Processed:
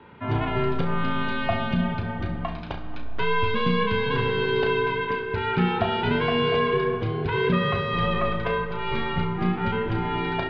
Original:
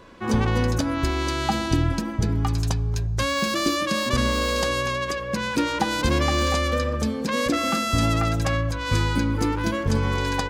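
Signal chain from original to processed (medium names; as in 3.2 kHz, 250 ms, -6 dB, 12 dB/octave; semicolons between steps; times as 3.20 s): mistuned SSB -110 Hz 170–3400 Hz; flutter echo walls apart 5.8 m, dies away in 0.29 s; algorithmic reverb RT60 4.4 s, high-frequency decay 0.4×, pre-delay 20 ms, DRR 10 dB; trim -1 dB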